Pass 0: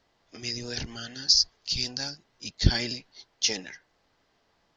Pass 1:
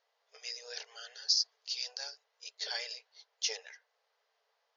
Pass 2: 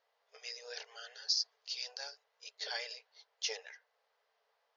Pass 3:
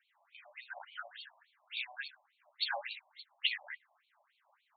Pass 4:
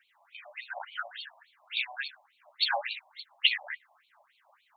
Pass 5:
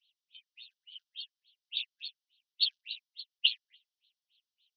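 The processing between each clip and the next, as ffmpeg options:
-af "afftfilt=real='re*between(b*sr/4096,410,7100)':imag='im*between(b*sr/4096,410,7100)':win_size=4096:overlap=0.75,volume=-8dB"
-af "highshelf=f=4.6k:g=-9,volume=1dB"
-af "afftfilt=real='re*between(b*sr/1024,770*pow(3200/770,0.5+0.5*sin(2*PI*3.5*pts/sr))/1.41,770*pow(3200/770,0.5+0.5*sin(2*PI*3.5*pts/sr))*1.41)':imag='im*between(b*sr/1024,770*pow(3200/770,0.5+0.5*sin(2*PI*3.5*pts/sr))/1.41,770*pow(3200/770,0.5+0.5*sin(2*PI*3.5*pts/sr))*1.41)':win_size=1024:overlap=0.75,volume=10.5dB"
-af "aphaser=in_gain=1:out_gain=1:delay=1.7:decay=0.2:speed=1.2:type=sinusoidal,volume=7.5dB"
-af "asuperpass=centerf=4200:order=12:qfactor=1.3"

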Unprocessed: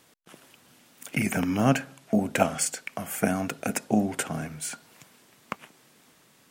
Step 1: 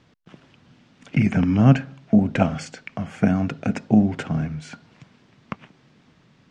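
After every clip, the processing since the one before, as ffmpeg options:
-af "lowpass=f=5.8k:w=0.5412,lowpass=f=5.8k:w=1.3066,bass=f=250:g=13,treble=f=4k:g=-5"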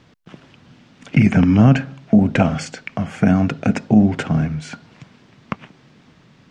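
-af "alimiter=level_in=8dB:limit=-1dB:release=50:level=0:latency=1,volume=-2dB"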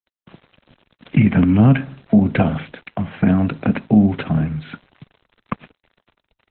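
-filter_complex "[0:a]aeval=exprs='val(0)*gte(abs(val(0)),0.0075)':c=same,acrossover=split=260[a][b];[b]acompressor=threshold=-13dB:ratio=5[c];[a][c]amix=inputs=2:normalize=0" -ar 48000 -c:a libopus -b:a 8k

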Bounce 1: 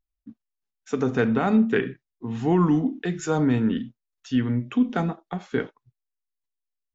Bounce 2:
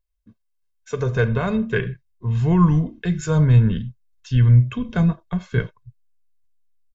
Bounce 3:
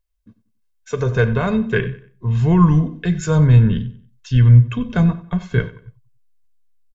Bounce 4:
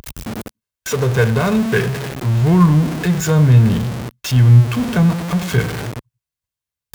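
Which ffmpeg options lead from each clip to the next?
-af "asubboost=boost=10:cutoff=140,aecho=1:1:1.9:0.78"
-filter_complex "[0:a]asplit=2[a][b];[b]adelay=93,lowpass=f=5k:p=1,volume=-16.5dB,asplit=2[c][d];[d]adelay=93,lowpass=f=5k:p=1,volume=0.36,asplit=2[e][f];[f]adelay=93,lowpass=f=5k:p=1,volume=0.36[g];[a][c][e][g]amix=inputs=4:normalize=0,volume=3dB"
-af "aeval=exprs='val(0)+0.5*0.112*sgn(val(0))':c=same,highpass=57"

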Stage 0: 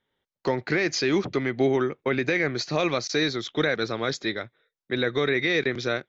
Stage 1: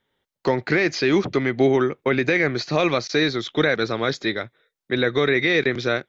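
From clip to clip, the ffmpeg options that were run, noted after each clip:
-filter_complex "[0:a]acrossover=split=4600[a][b];[b]acompressor=threshold=-45dB:ratio=4:attack=1:release=60[c];[a][c]amix=inputs=2:normalize=0,volume=4.5dB"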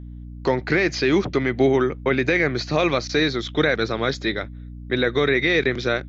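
-af "aeval=exprs='val(0)+0.0178*(sin(2*PI*60*n/s)+sin(2*PI*2*60*n/s)/2+sin(2*PI*3*60*n/s)/3+sin(2*PI*4*60*n/s)/4+sin(2*PI*5*60*n/s)/5)':c=same"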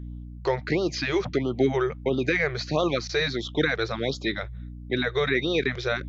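-af "areverse,acompressor=mode=upward:threshold=-27dB:ratio=2.5,areverse,afftfilt=real='re*(1-between(b*sr/1024,220*pow(2000/220,0.5+0.5*sin(2*PI*1.5*pts/sr))/1.41,220*pow(2000/220,0.5+0.5*sin(2*PI*1.5*pts/sr))*1.41))':imag='im*(1-between(b*sr/1024,220*pow(2000/220,0.5+0.5*sin(2*PI*1.5*pts/sr))/1.41,220*pow(2000/220,0.5+0.5*sin(2*PI*1.5*pts/sr))*1.41))':win_size=1024:overlap=0.75,volume=-3.5dB"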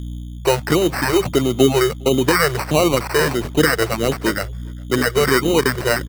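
-filter_complex "[0:a]acrusher=samples=13:mix=1:aa=0.000001,asplit=2[a][b];[b]adelay=408.2,volume=-28dB,highshelf=f=4k:g=-9.18[c];[a][c]amix=inputs=2:normalize=0,volume=8.5dB"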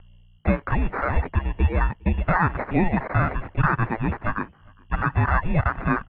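-filter_complex "[0:a]asplit=2[a][b];[b]asoftclip=type=tanh:threshold=-13dB,volume=-10.5dB[c];[a][c]amix=inputs=2:normalize=0,highpass=f=330:t=q:w=0.5412,highpass=f=330:t=q:w=1.307,lowpass=f=2.6k:t=q:w=0.5176,lowpass=f=2.6k:t=q:w=0.7071,lowpass=f=2.6k:t=q:w=1.932,afreqshift=-330,volume=-4.5dB"

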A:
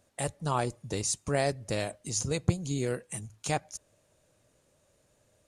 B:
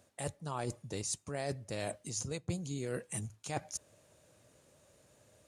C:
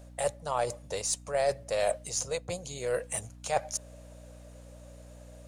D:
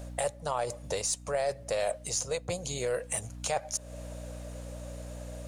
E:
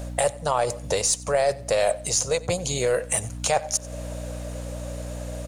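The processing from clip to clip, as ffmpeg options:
-af "highpass=64,areverse,acompressor=threshold=-39dB:ratio=5,areverse,volume=3.5dB"
-af "lowshelf=f=400:t=q:w=3:g=-10.5,aeval=exprs='0.0944*(cos(1*acos(clip(val(0)/0.0944,-1,1)))-cos(1*PI/2))+0.00119*(cos(8*acos(clip(val(0)/0.0944,-1,1)))-cos(8*PI/2))':c=same,aeval=exprs='val(0)+0.00178*(sin(2*PI*60*n/s)+sin(2*PI*2*60*n/s)/2+sin(2*PI*3*60*n/s)/3+sin(2*PI*4*60*n/s)/4+sin(2*PI*5*60*n/s)/5)':c=same,volume=6.5dB"
-af "acompressor=threshold=-40dB:ratio=2.5,volume=8dB"
-af "aecho=1:1:93|186:0.0841|0.0252,volume=8.5dB"

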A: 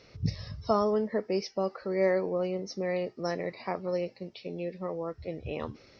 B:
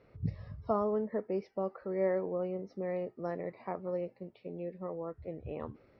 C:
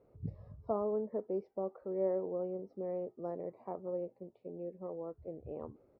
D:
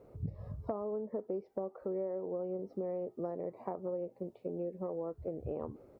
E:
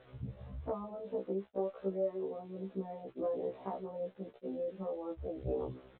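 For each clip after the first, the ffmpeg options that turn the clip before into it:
-af "lowpass=1.5k,volume=-4.5dB"
-af "firequalizer=gain_entry='entry(160,0);entry(370,5);entry(860,2);entry(1800,-13)':delay=0.05:min_phase=1,volume=-6.5dB"
-af "acompressor=threshold=-43dB:ratio=10,volume=9dB"
-af "aresample=8000,aeval=exprs='val(0)*gte(abs(val(0)),0.00133)':c=same,aresample=44100,flanger=delay=8:depth=7.8:regen=40:speed=0.44:shape=sinusoidal,afftfilt=real='re*1.73*eq(mod(b,3),0)':imag='im*1.73*eq(mod(b,3),0)':win_size=2048:overlap=0.75,volume=6.5dB"

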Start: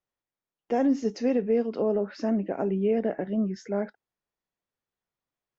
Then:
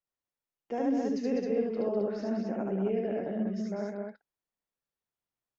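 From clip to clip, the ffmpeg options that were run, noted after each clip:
-af "aecho=1:1:72.89|201.2|265.3:0.891|0.562|0.631,volume=-8.5dB"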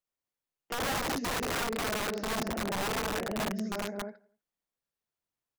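-filter_complex "[0:a]asplit=2[a][b];[b]adelay=85,lowpass=f=4.9k:p=1,volume=-21.5dB,asplit=2[c][d];[d]adelay=85,lowpass=f=4.9k:p=1,volume=0.46,asplit=2[e][f];[f]adelay=85,lowpass=f=4.9k:p=1,volume=0.46[g];[a][c][e][g]amix=inputs=4:normalize=0,aeval=exprs='(mod(22.4*val(0)+1,2)-1)/22.4':c=same"

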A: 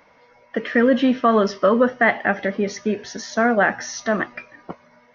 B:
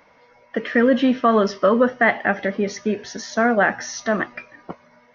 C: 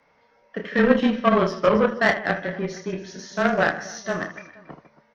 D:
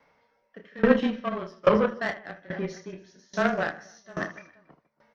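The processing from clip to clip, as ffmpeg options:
-af anull
-af "aecho=1:1:30|78|154.8|277.7|474.3:0.631|0.398|0.251|0.158|0.1,aeval=exprs='0.794*(cos(1*acos(clip(val(0)/0.794,-1,1)))-cos(1*PI/2))+0.141*(cos(3*acos(clip(val(0)/0.794,-1,1)))-cos(3*PI/2))+0.0126*(cos(7*acos(clip(val(0)/0.794,-1,1)))-cos(7*PI/2))':c=same,afreqshift=-22"
-af "aeval=exprs='val(0)*pow(10,-22*if(lt(mod(1.2*n/s,1),2*abs(1.2)/1000),1-mod(1.2*n/s,1)/(2*abs(1.2)/1000),(mod(1.2*n/s,1)-2*abs(1.2)/1000)/(1-2*abs(1.2)/1000))/20)':c=same"

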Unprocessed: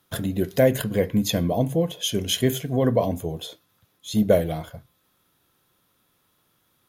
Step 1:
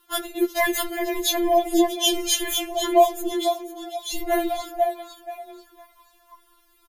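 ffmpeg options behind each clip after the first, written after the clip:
-filter_complex "[0:a]asplit=5[a][b][c][d][e];[b]adelay=496,afreqshift=100,volume=-11dB[f];[c]adelay=992,afreqshift=200,volume=-20.1dB[g];[d]adelay=1488,afreqshift=300,volume=-29.2dB[h];[e]adelay=1984,afreqshift=400,volume=-38.4dB[i];[a][f][g][h][i]amix=inputs=5:normalize=0,asubboost=boost=7:cutoff=96,afftfilt=real='re*4*eq(mod(b,16),0)':imag='im*4*eq(mod(b,16),0)':win_size=2048:overlap=0.75,volume=8dB"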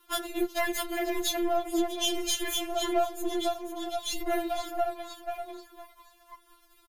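-af "aeval=exprs='if(lt(val(0),0),0.447*val(0),val(0))':c=same,acompressor=threshold=-31dB:ratio=2.5,aecho=1:1:2.9:0.4"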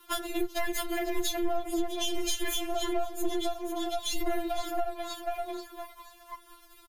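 -filter_complex "[0:a]acrossover=split=170[a][b];[b]acompressor=threshold=-36dB:ratio=6[c];[a][c]amix=inputs=2:normalize=0,volume=6dB"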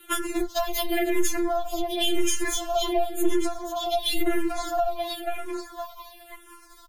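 -filter_complex "[0:a]asplit=2[a][b];[b]afreqshift=-0.95[c];[a][c]amix=inputs=2:normalize=1,volume=8.5dB"

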